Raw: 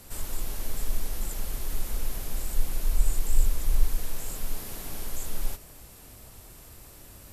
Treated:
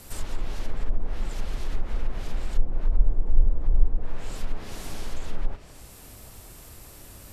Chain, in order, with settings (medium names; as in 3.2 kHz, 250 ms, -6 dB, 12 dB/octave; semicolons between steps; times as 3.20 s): low-pass that closes with the level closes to 660 Hz, closed at -17 dBFS; trim +3 dB